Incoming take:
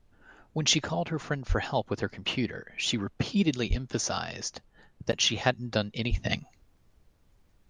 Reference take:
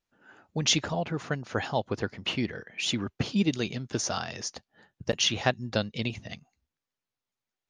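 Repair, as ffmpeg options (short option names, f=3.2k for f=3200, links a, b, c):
-filter_complex "[0:a]asplit=3[a][b][c];[a]afade=t=out:st=1.48:d=0.02[d];[b]highpass=f=140:w=0.5412,highpass=f=140:w=1.3066,afade=t=in:st=1.48:d=0.02,afade=t=out:st=1.6:d=0.02[e];[c]afade=t=in:st=1.6:d=0.02[f];[d][e][f]amix=inputs=3:normalize=0,asplit=3[g][h][i];[g]afade=t=out:st=3.69:d=0.02[j];[h]highpass=f=140:w=0.5412,highpass=f=140:w=1.3066,afade=t=in:st=3.69:d=0.02,afade=t=out:st=3.81:d=0.02[k];[i]afade=t=in:st=3.81:d=0.02[l];[j][k][l]amix=inputs=3:normalize=0,asplit=3[m][n][o];[m]afade=t=out:st=6.1:d=0.02[p];[n]highpass=f=140:w=0.5412,highpass=f=140:w=1.3066,afade=t=in:st=6.1:d=0.02,afade=t=out:st=6.22:d=0.02[q];[o]afade=t=in:st=6.22:d=0.02[r];[p][q][r]amix=inputs=3:normalize=0,agate=range=-21dB:threshold=-55dB,asetnsamples=n=441:p=0,asendcmd='6.24 volume volume -11.5dB',volume=0dB"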